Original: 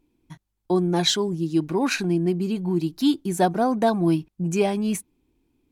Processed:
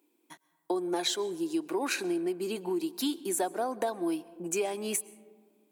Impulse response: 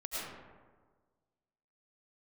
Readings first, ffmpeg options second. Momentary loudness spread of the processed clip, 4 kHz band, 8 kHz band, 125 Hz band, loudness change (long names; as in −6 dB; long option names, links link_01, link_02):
4 LU, −8.0 dB, −1.5 dB, −23.5 dB, −8.5 dB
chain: -filter_complex "[0:a]aexciter=amount=2.8:drive=2.8:freq=7600,highpass=frequency=320:width=0.5412,highpass=frequency=320:width=1.3066,acompressor=threshold=-28dB:ratio=6,asplit=2[link_01][link_02];[1:a]atrim=start_sample=2205,asetrate=36603,aresample=44100[link_03];[link_02][link_03]afir=irnorm=-1:irlink=0,volume=-22.5dB[link_04];[link_01][link_04]amix=inputs=2:normalize=0"